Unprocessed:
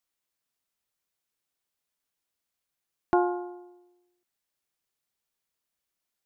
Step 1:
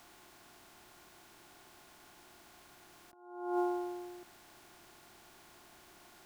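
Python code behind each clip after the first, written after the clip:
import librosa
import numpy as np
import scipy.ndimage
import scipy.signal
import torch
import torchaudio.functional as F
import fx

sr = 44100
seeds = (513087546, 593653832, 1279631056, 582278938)

y = fx.bin_compress(x, sr, power=0.6)
y = fx.high_shelf(y, sr, hz=2100.0, db=8.0)
y = fx.over_compress(y, sr, threshold_db=-35.0, ratio=-0.5)
y = y * librosa.db_to_amplitude(-2.0)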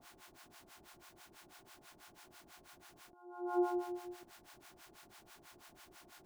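y = fx.harmonic_tremolo(x, sr, hz=6.1, depth_pct=100, crossover_hz=660.0)
y = y * librosa.db_to_amplitude(3.5)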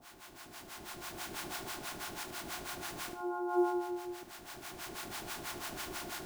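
y = fx.recorder_agc(x, sr, target_db=-34.0, rise_db_per_s=11.0, max_gain_db=30)
y = fx.quant_companded(y, sr, bits=8)
y = fx.echo_feedback(y, sr, ms=74, feedback_pct=39, wet_db=-11.5)
y = y * librosa.db_to_amplitude(3.5)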